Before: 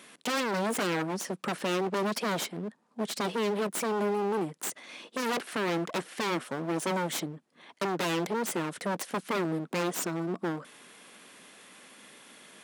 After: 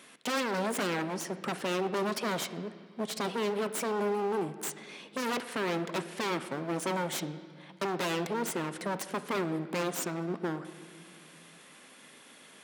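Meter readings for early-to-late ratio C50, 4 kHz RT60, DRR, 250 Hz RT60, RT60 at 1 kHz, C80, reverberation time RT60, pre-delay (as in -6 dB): 12.5 dB, 2.0 s, 10.5 dB, 2.9 s, 2.0 s, 14.0 dB, 2.2 s, 7 ms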